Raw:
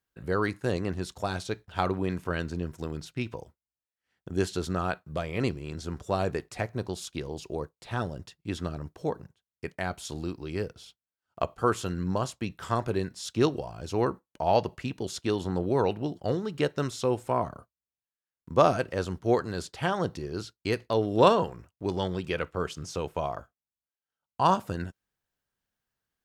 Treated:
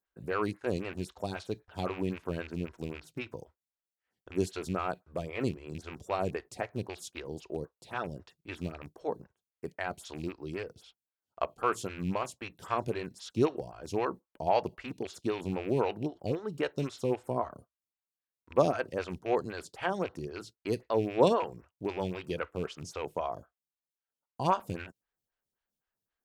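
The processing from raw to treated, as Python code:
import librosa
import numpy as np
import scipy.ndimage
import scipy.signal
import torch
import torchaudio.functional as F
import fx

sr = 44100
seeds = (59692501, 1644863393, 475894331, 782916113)

y = fx.rattle_buzz(x, sr, strikes_db=-31.0, level_db=-29.0)
y = fx.stagger_phaser(y, sr, hz=3.8)
y = y * librosa.db_to_amplitude(-1.5)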